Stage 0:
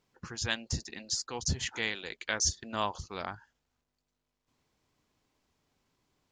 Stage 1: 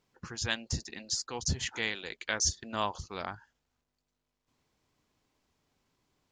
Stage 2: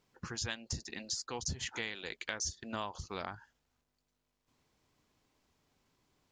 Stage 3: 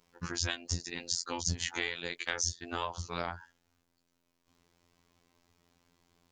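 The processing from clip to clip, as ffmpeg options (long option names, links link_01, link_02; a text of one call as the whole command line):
ffmpeg -i in.wav -af anull out.wav
ffmpeg -i in.wav -af "acompressor=threshold=-36dB:ratio=5,volume=1dB" out.wav
ffmpeg -i in.wav -af "afftfilt=real='hypot(re,im)*cos(PI*b)':imag='0':win_size=2048:overlap=0.75,volume=8dB" out.wav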